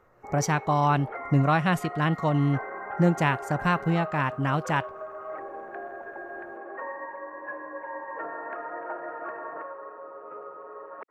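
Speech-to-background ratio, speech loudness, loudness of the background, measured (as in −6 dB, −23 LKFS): 12.5 dB, −25.5 LKFS, −38.0 LKFS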